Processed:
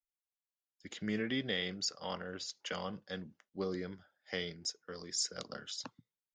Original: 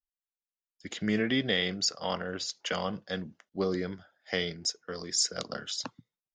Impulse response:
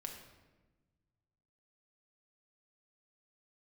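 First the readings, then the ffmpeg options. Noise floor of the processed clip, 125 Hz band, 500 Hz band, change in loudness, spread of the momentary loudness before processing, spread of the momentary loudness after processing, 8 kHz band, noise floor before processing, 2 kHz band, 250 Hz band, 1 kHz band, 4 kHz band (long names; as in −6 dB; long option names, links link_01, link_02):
below −85 dBFS, −7.5 dB, −7.5 dB, −7.5 dB, 13 LU, 13 LU, −7.5 dB, below −85 dBFS, −7.5 dB, −7.5 dB, −8.0 dB, −7.5 dB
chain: -af "bandreject=frequency=680:width=12,volume=-7.5dB"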